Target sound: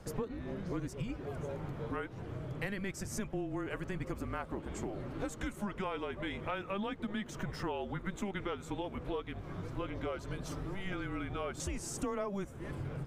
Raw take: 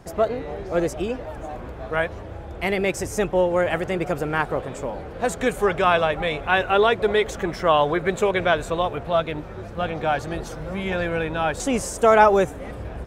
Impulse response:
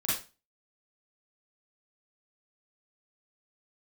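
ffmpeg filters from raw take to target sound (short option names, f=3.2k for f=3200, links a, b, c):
-af "acompressor=threshold=-31dB:ratio=6,afreqshift=-200,volume=-4.5dB"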